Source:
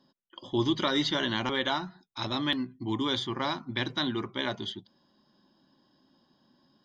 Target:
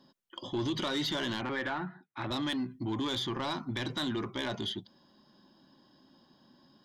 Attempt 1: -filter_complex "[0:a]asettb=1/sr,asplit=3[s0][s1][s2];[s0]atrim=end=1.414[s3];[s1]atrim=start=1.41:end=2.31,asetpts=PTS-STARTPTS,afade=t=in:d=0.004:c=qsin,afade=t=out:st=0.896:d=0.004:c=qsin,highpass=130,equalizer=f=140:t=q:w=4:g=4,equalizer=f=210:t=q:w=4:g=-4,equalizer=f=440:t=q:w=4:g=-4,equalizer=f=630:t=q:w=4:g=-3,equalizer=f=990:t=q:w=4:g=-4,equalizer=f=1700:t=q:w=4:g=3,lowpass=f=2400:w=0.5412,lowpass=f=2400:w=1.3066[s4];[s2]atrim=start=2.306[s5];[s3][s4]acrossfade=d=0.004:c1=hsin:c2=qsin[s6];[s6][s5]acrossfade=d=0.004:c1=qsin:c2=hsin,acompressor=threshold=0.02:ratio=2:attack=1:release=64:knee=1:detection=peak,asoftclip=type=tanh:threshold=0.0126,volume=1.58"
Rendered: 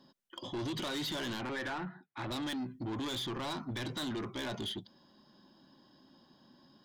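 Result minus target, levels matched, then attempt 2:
saturation: distortion +7 dB
-filter_complex "[0:a]asettb=1/sr,asplit=3[s0][s1][s2];[s0]atrim=end=1.414[s3];[s1]atrim=start=1.41:end=2.31,asetpts=PTS-STARTPTS,afade=t=in:d=0.004:c=qsin,afade=t=out:st=0.896:d=0.004:c=qsin,highpass=130,equalizer=f=140:t=q:w=4:g=4,equalizer=f=210:t=q:w=4:g=-4,equalizer=f=440:t=q:w=4:g=-4,equalizer=f=630:t=q:w=4:g=-3,equalizer=f=990:t=q:w=4:g=-4,equalizer=f=1700:t=q:w=4:g=3,lowpass=f=2400:w=0.5412,lowpass=f=2400:w=1.3066[s4];[s2]atrim=start=2.306[s5];[s3][s4]acrossfade=d=0.004:c1=hsin:c2=qsin[s6];[s6][s5]acrossfade=d=0.004:c1=qsin:c2=hsin,acompressor=threshold=0.02:ratio=2:attack=1:release=64:knee=1:detection=peak,asoftclip=type=tanh:threshold=0.0316,volume=1.58"

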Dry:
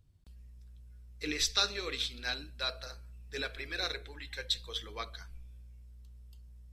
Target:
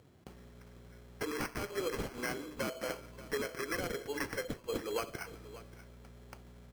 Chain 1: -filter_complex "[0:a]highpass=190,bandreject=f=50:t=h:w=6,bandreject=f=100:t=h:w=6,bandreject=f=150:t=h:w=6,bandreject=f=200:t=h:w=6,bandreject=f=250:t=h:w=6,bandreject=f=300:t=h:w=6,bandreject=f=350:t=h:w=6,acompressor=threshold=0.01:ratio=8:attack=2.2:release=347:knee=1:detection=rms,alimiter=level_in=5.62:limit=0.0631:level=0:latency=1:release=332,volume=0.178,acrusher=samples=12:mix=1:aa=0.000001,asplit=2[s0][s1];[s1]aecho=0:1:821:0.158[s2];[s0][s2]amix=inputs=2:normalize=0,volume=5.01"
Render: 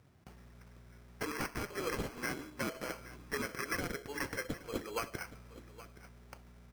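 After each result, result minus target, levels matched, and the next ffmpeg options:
echo 239 ms late; 500 Hz band -3.0 dB
-filter_complex "[0:a]highpass=190,bandreject=f=50:t=h:w=6,bandreject=f=100:t=h:w=6,bandreject=f=150:t=h:w=6,bandreject=f=200:t=h:w=6,bandreject=f=250:t=h:w=6,bandreject=f=300:t=h:w=6,bandreject=f=350:t=h:w=6,acompressor=threshold=0.01:ratio=8:attack=2.2:release=347:knee=1:detection=rms,alimiter=level_in=5.62:limit=0.0631:level=0:latency=1:release=332,volume=0.178,acrusher=samples=12:mix=1:aa=0.000001,asplit=2[s0][s1];[s1]aecho=0:1:582:0.158[s2];[s0][s2]amix=inputs=2:normalize=0,volume=5.01"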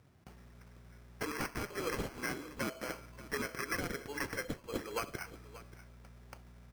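500 Hz band -3.0 dB
-filter_complex "[0:a]highpass=190,equalizer=f=440:t=o:w=1.7:g=8.5,bandreject=f=50:t=h:w=6,bandreject=f=100:t=h:w=6,bandreject=f=150:t=h:w=6,bandreject=f=200:t=h:w=6,bandreject=f=250:t=h:w=6,bandreject=f=300:t=h:w=6,bandreject=f=350:t=h:w=6,acompressor=threshold=0.01:ratio=8:attack=2.2:release=347:knee=1:detection=rms,alimiter=level_in=5.62:limit=0.0631:level=0:latency=1:release=332,volume=0.178,acrusher=samples=12:mix=1:aa=0.000001,asplit=2[s0][s1];[s1]aecho=0:1:582:0.158[s2];[s0][s2]amix=inputs=2:normalize=0,volume=5.01"

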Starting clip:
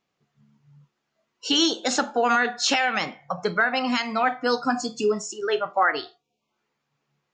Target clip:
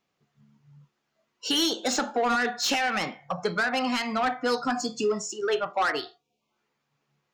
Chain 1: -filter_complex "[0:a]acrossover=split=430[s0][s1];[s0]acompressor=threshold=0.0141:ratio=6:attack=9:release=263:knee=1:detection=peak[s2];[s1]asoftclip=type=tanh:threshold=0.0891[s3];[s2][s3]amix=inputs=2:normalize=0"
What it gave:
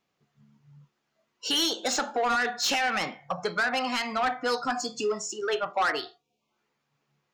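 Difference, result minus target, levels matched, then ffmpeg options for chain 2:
compression: peak gain reduction +7.5 dB
-filter_complex "[0:a]acrossover=split=430[s0][s1];[s0]acompressor=threshold=0.0398:ratio=6:attack=9:release=263:knee=1:detection=peak[s2];[s1]asoftclip=type=tanh:threshold=0.0891[s3];[s2][s3]amix=inputs=2:normalize=0"

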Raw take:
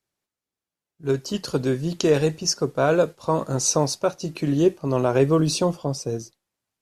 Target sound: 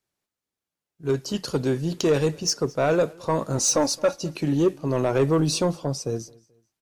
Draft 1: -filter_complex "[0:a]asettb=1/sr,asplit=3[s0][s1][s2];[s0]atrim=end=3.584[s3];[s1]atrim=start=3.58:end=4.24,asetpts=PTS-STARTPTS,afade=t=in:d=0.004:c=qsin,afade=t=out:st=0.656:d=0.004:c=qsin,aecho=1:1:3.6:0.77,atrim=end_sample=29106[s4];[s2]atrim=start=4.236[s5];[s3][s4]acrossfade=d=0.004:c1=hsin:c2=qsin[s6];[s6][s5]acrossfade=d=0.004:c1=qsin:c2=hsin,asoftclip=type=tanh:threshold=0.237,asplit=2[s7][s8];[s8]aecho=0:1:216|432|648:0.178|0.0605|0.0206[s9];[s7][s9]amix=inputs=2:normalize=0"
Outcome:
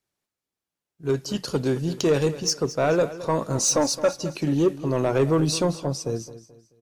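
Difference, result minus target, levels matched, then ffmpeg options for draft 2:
echo-to-direct +10 dB
-filter_complex "[0:a]asettb=1/sr,asplit=3[s0][s1][s2];[s0]atrim=end=3.584[s3];[s1]atrim=start=3.58:end=4.24,asetpts=PTS-STARTPTS,afade=t=in:d=0.004:c=qsin,afade=t=out:st=0.656:d=0.004:c=qsin,aecho=1:1:3.6:0.77,atrim=end_sample=29106[s4];[s2]atrim=start=4.236[s5];[s3][s4]acrossfade=d=0.004:c1=hsin:c2=qsin[s6];[s6][s5]acrossfade=d=0.004:c1=qsin:c2=hsin,asoftclip=type=tanh:threshold=0.237,asplit=2[s7][s8];[s8]aecho=0:1:216|432:0.0562|0.0191[s9];[s7][s9]amix=inputs=2:normalize=0"

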